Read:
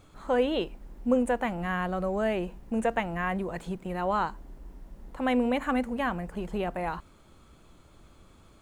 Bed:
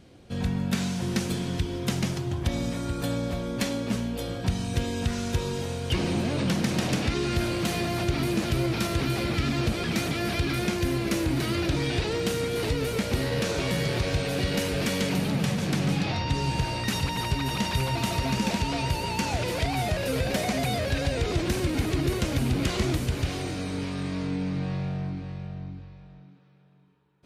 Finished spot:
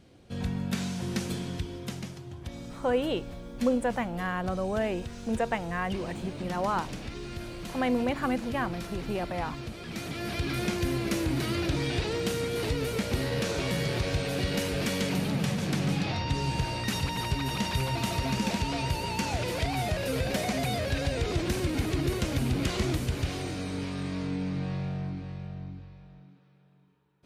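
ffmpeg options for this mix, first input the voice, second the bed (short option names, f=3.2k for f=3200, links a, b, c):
-filter_complex "[0:a]adelay=2550,volume=-1.5dB[a];[1:a]volume=6dB,afade=t=out:st=1.35:d=0.78:silence=0.375837,afade=t=in:st=9.81:d=0.85:silence=0.316228[b];[a][b]amix=inputs=2:normalize=0"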